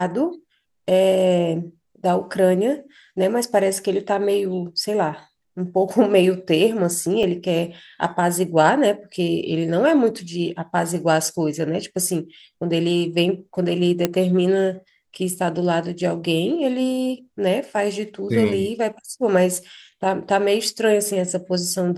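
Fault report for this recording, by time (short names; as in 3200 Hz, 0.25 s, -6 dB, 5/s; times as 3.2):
7.23 gap 3.5 ms
14.05 pop -4 dBFS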